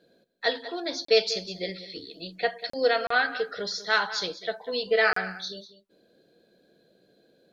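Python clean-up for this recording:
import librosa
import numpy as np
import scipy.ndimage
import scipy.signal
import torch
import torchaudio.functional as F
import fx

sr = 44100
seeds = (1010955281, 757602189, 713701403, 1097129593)

y = fx.fix_interpolate(x, sr, at_s=(1.05, 2.7, 3.07, 5.13), length_ms=34.0)
y = fx.fix_echo_inverse(y, sr, delay_ms=194, level_db=-15.0)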